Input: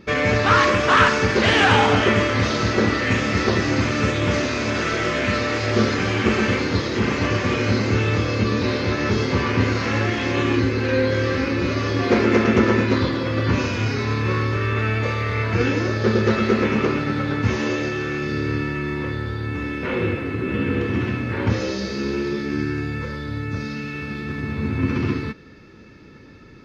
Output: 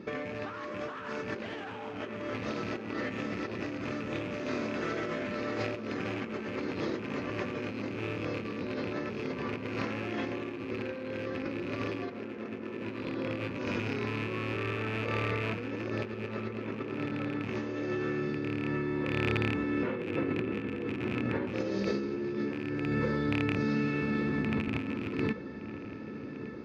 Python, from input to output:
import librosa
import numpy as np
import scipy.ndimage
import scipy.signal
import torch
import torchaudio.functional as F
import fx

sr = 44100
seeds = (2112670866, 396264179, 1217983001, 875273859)

y = fx.rattle_buzz(x, sr, strikes_db=-22.0, level_db=-11.0)
y = scipy.signal.sosfilt(scipy.signal.butter(2, 240.0, 'highpass', fs=sr, output='sos'), y)
y = fx.tilt_eq(y, sr, slope=-3.0)
y = fx.over_compress(y, sr, threshold_db=-27.0, ratio=-1.0)
y = fx.echo_filtered(y, sr, ms=1166, feedback_pct=78, hz=2600.0, wet_db=-14.5)
y = y * librosa.db_to_amplitude(-8.0)